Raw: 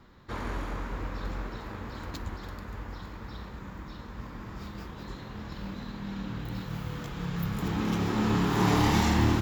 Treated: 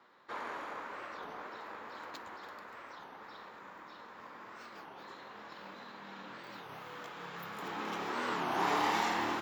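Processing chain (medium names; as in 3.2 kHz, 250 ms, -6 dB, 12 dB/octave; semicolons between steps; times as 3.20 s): high-pass 590 Hz 12 dB/octave; treble shelf 3.6 kHz -11 dB; warped record 33 1/3 rpm, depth 250 cents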